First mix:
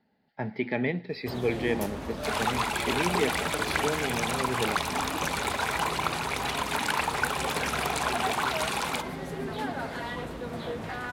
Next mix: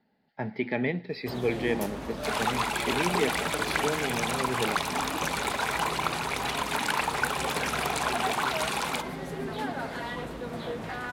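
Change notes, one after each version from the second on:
master: add parametric band 84 Hz −11.5 dB 0.28 octaves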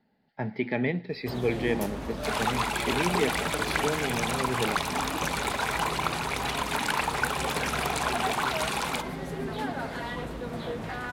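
master: add low-shelf EQ 110 Hz +6.5 dB

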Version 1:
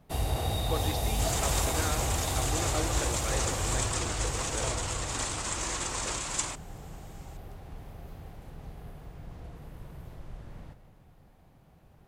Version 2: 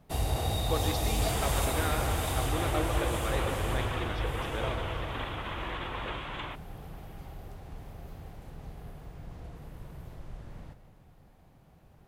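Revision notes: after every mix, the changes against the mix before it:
speech: send +11.5 dB
second sound: add elliptic low-pass filter 3,400 Hz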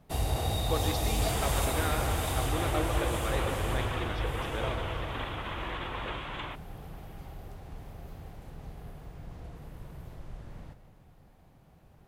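nothing changed

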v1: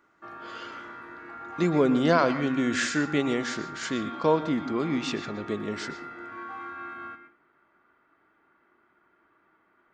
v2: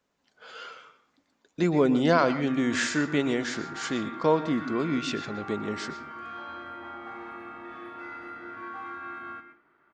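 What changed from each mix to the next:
background: entry +2.25 s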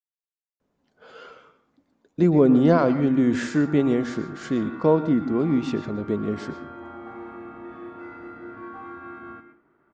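speech: entry +0.60 s
master: add tilt shelving filter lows +8 dB, about 890 Hz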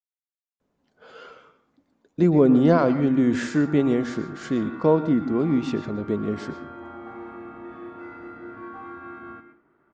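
nothing changed

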